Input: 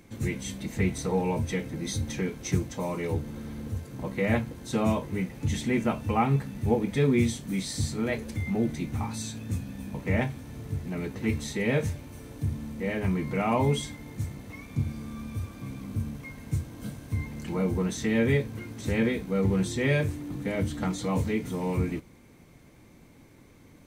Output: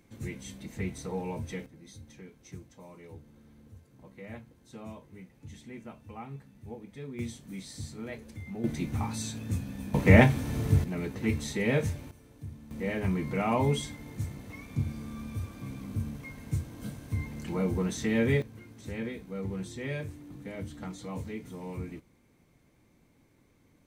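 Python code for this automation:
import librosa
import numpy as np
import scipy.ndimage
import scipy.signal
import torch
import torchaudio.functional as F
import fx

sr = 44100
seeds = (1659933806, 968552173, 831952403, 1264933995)

y = fx.gain(x, sr, db=fx.steps((0.0, -8.0), (1.66, -18.5), (7.19, -11.0), (8.64, -0.5), (9.94, 9.0), (10.84, -1.0), (12.11, -12.5), (12.71, -2.0), (18.42, -10.5)))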